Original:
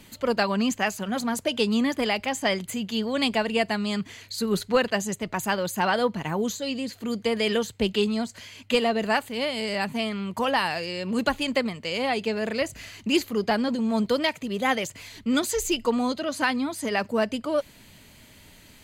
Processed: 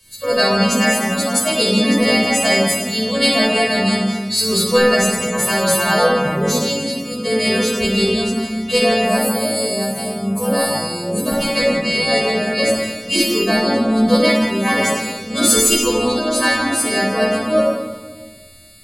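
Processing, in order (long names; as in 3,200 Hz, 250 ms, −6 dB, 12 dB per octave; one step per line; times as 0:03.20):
every partial snapped to a pitch grid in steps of 2 semitones
0:09.05–0:11.32: drawn EQ curve 600 Hz 0 dB, 2,600 Hz −14 dB, 12,000 Hz +10 dB
soft clipping −8.5 dBFS, distortion −28 dB
convolution reverb RT60 1.9 s, pre-delay 22 ms, DRR −4 dB
multiband upward and downward expander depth 40%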